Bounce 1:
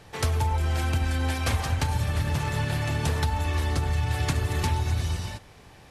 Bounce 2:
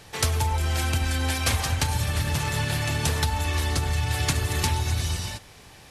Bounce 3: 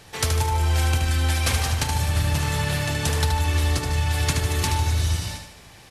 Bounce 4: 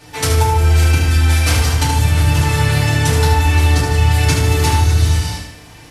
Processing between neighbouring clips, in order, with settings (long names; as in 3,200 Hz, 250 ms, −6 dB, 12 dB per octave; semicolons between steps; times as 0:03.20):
high-shelf EQ 2,500 Hz +9 dB
repeating echo 75 ms, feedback 49%, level −6 dB
feedback delay network reverb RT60 0.45 s, low-frequency decay 1.35×, high-frequency decay 0.7×, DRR −7 dB; level −1 dB